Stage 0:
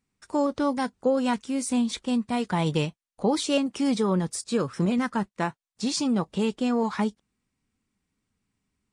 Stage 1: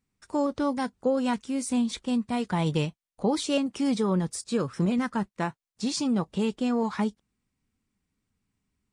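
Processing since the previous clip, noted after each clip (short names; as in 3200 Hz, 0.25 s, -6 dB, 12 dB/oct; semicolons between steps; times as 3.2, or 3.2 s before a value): low shelf 160 Hz +4.5 dB; gain -2.5 dB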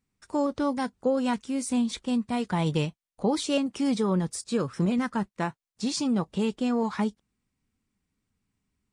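nothing audible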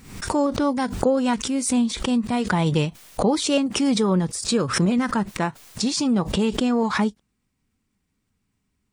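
backwards sustainer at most 84 dB/s; gain +5 dB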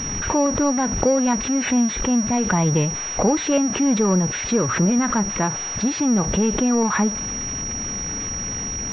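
zero-crossing step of -25.5 dBFS; pulse-width modulation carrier 5700 Hz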